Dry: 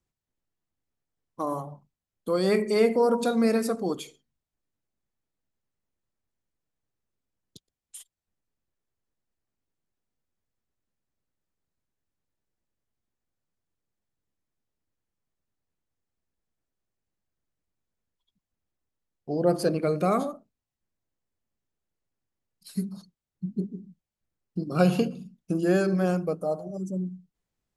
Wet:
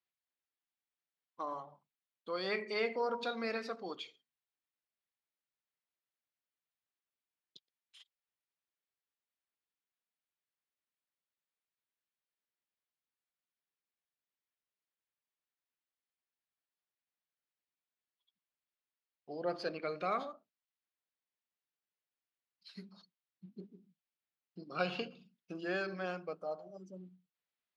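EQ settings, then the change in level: band-pass 4800 Hz, Q 0.99; air absorption 310 m; high shelf 4800 Hz -5 dB; +7.5 dB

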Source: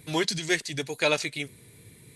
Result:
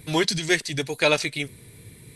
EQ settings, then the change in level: low shelf 60 Hz +10.5 dB; notch 6800 Hz, Q 15; +4.0 dB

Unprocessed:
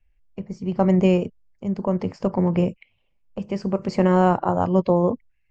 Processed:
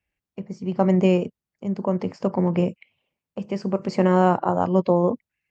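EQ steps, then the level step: HPF 140 Hz 12 dB/oct; 0.0 dB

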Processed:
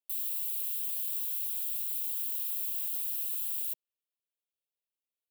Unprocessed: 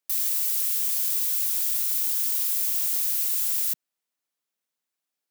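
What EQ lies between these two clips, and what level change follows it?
HPF 160 Hz; band shelf 1500 Hz -12 dB 1.1 oct; fixed phaser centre 1200 Hz, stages 8; -8.0 dB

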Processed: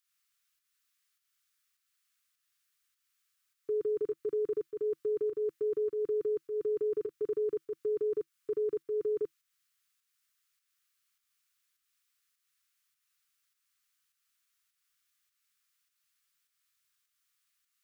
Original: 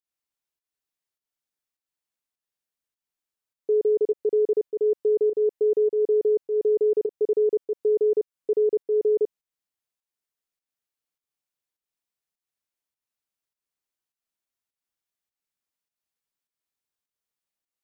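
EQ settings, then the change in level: EQ curve 150 Hz 0 dB, 210 Hz -14 dB, 330 Hz -6 dB, 720 Hz -22 dB, 1200 Hz +10 dB; +1.0 dB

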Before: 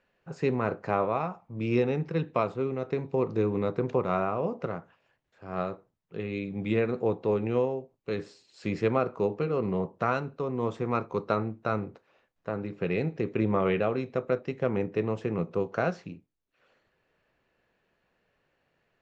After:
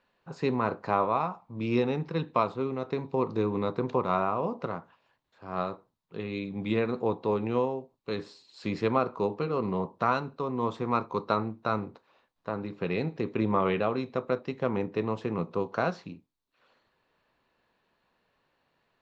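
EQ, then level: fifteen-band EQ 250 Hz +4 dB, 1000 Hz +9 dB, 4000 Hz +9 dB; -3.0 dB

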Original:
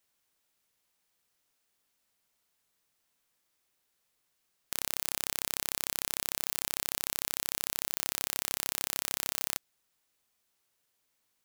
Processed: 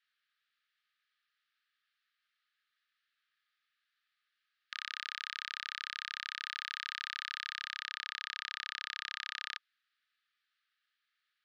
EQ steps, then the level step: rippled Chebyshev high-pass 1200 Hz, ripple 6 dB; LPF 3400 Hz 24 dB/oct; +6.0 dB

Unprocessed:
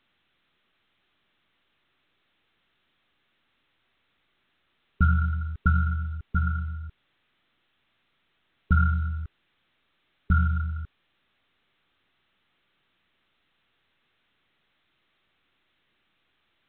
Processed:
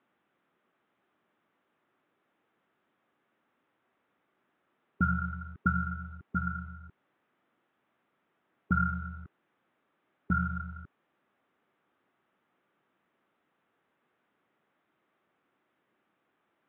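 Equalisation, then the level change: HPF 200 Hz 12 dB/oct; LPF 1200 Hz 12 dB/oct; +3.0 dB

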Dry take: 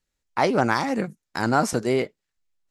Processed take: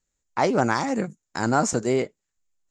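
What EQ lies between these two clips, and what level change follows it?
synth low-pass 7100 Hz, resonance Q 7.4; high shelf 2600 Hz -8.5 dB; 0.0 dB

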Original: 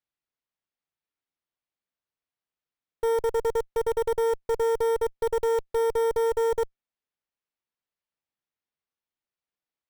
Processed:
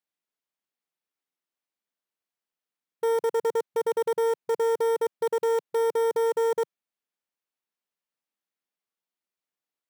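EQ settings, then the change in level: brick-wall FIR high-pass 150 Hz; 0.0 dB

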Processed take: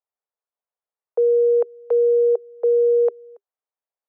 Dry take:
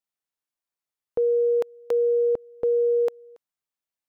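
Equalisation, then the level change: Chebyshev high-pass 400 Hz, order 8; LPF 1000 Hz 12 dB/oct; +5.0 dB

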